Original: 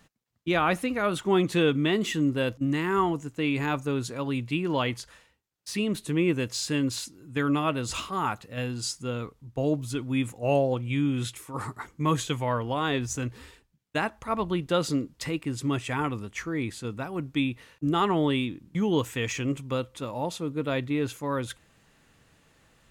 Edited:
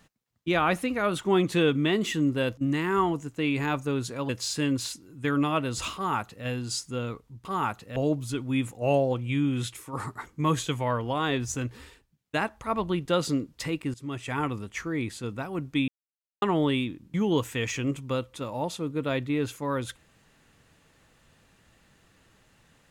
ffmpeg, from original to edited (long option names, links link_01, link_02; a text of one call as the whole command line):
ffmpeg -i in.wav -filter_complex "[0:a]asplit=7[link_01][link_02][link_03][link_04][link_05][link_06][link_07];[link_01]atrim=end=4.292[link_08];[link_02]atrim=start=6.408:end=9.572[link_09];[link_03]atrim=start=8.068:end=8.582[link_10];[link_04]atrim=start=9.568:end=15.55,asetpts=PTS-STARTPTS,afade=type=out:start_time=5.978:duration=0.004:curve=hsin:silence=0.149624[link_11];[link_05]atrim=start=15.55:end=17.49,asetpts=PTS-STARTPTS,afade=type=in:duration=0.49:silence=0.149624,afade=type=out:start_time=1.936:duration=0.004:curve=hsin[link_12];[link_06]atrim=start=17.49:end=18.03,asetpts=PTS-STARTPTS,volume=0[link_13];[link_07]atrim=start=18.03,asetpts=PTS-STARTPTS,afade=type=in:duration=0.004:curve=hsin[link_14];[link_08][link_09]acrossfade=duration=0.004:curve1=hsin:curve2=hsin[link_15];[link_15][link_10]acrossfade=duration=0.004:curve1=hsin:curve2=hsin[link_16];[link_11][link_12][link_13][link_14]concat=n=4:v=0:a=1[link_17];[link_16][link_17]acrossfade=duration=0.004:curve1=hsin:curve2=hsin" out.wav